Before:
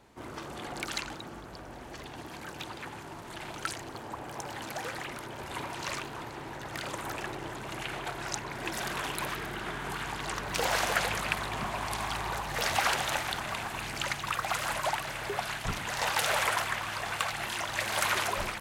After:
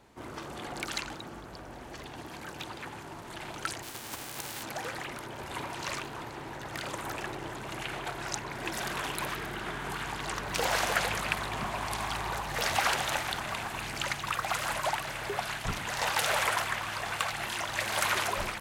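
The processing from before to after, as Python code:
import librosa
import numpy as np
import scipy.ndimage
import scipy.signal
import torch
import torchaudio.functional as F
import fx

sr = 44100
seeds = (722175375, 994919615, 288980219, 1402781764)

y = fx.envelope_flatten(x, sr, power=0.3, at=(3.82, 4.62), fade=0.02)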